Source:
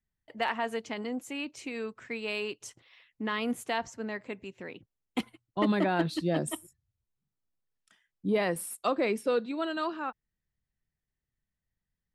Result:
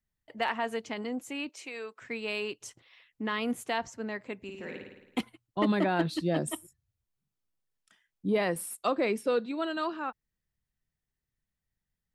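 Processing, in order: 1.49–2.02 s: high-pass 470 Hz 12 dB/octave; 4.42–5.20 s: flutter echo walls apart 9.3 m, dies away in 0.95 s

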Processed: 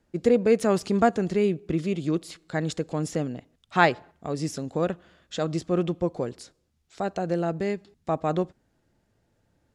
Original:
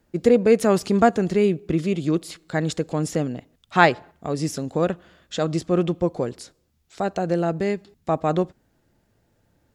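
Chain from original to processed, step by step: low-pass 11 kHz 12 dB/octave; trim -4 dB

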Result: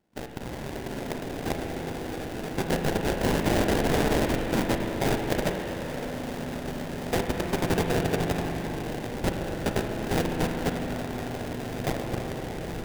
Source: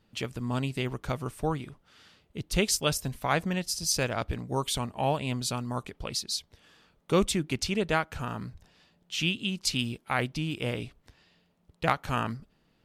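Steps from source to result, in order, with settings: rattle on loud lows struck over -33 dBFS, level -17 dBFS; high-pass 480 Hz 6 dB/octave; peaking EQ 8.5 kHz +6 dB 0.22 oct; band-stop 4.7 kHz, Q 19; echo with a slow build-up 84 ms, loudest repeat 5, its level -6 dB; level held to a coarse grid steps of 13 dB; sample-rate reducer 1.2 kHz, jitter 20%; peak limiter -20 dBFS, peak gain reduction 8 dB; spring tank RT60 3.6 s, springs 36/42 ms, chirp 45 ms, DRR 3.5 dB; trim +3 dB

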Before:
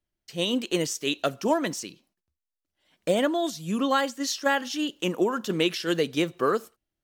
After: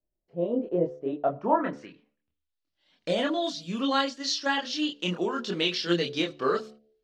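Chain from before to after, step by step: de-hum 72.83 Hz, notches 10; low-pass sweep 590 Hz -> 4.5 kHz, 0.99–2.63 s; chorus voices 6, 0.31 Hz, delay 26 ms, depth 3.8 ms

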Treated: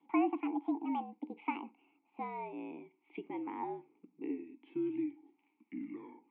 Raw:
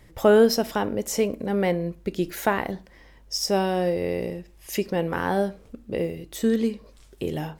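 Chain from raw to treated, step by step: gliding tape speed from 181% -> 60%; mistuned SSB -59 Hz 290–3000 Hz; vowel filter u; trim -1.5 dB

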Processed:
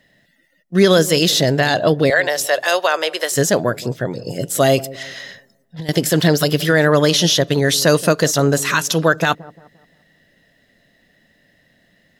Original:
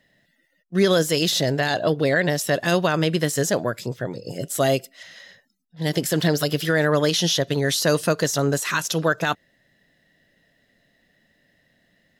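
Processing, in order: 2.10–3.32 s: high-pass 500 Hz 24 dB/octave; 4.77–5.89 s: compressor with a negative ratio -32 dBFS, ratio -1; on a send: feedback echo behind a low-pass 174 ms, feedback 37%, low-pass 730 Hz, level -17 dB; on the sum: trim +6 dB

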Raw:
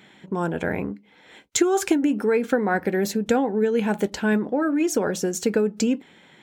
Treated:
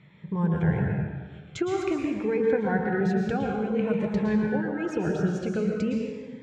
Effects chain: low-pass 2.6 kHz 12 dB/octave; resonant low shelf 190 Hz +8 dB, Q 3; plate-style reverb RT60 1.4 s, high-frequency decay 0.8×, pre-delay 100 ms, DRR 0 dB; Shepard-style phaser falling 0.5 Hz; trim -4.5 dB

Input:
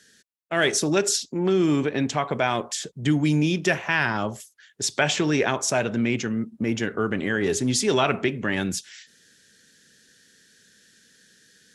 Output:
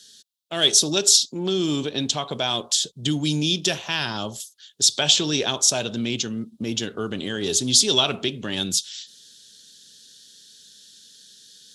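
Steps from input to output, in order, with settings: resonant high shelf 2.7 kHz +9.5 dB, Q 3; trim -3 dB

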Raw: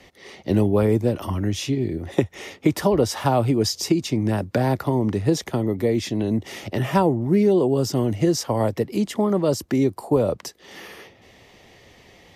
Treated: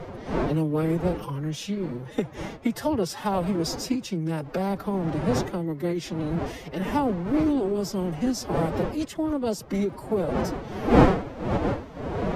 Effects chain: wind noise 530 Hz -23 dBFS; formant-preserving pitch shift +7 st; trim -6 dB

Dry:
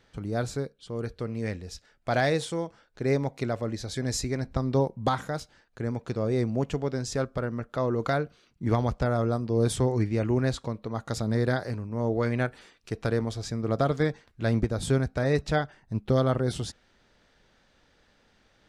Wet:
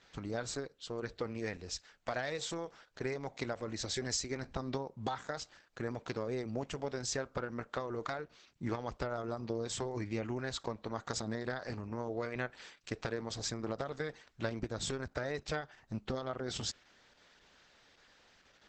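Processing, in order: bass shelf 480 Hz -10.5 dB; compression 12:1, threshold -35 dBFS, peak gain reduction 12.5 dB; trim +3 dB; Opus 10 kbps 48 kHz

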